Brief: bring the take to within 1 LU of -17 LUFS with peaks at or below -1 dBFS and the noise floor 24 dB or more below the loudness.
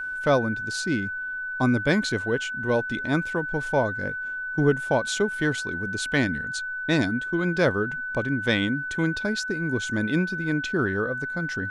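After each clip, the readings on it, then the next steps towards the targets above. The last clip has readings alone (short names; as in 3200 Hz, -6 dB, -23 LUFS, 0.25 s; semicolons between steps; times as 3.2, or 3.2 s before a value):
steady tone 1500 Hz; tone level -29 dBFS; loudness -25.5 LUFS; peak -8.5 dBFS; loudness target -17.0 LUFS
-> notch 1500 Hz, Q 30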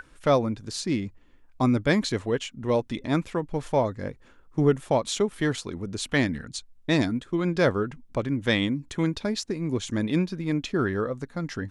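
steady tone none; loudness -26.5 LUFS; peak -8.5 dBFS; loudness target -17.0 LUFS
-> gain +9.5 dB; limiter -1 dBFS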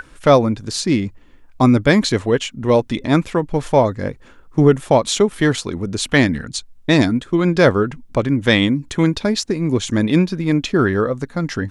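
loudness -17.5 LUFS; peak -1.0 dBFS; noise floor -46 dBFS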